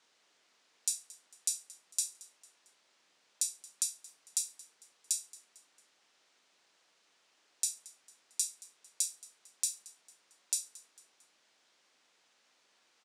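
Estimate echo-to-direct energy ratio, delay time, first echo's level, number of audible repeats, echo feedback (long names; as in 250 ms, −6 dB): −19.5 dB, 225 ms, −20.5 dB, 3, 45%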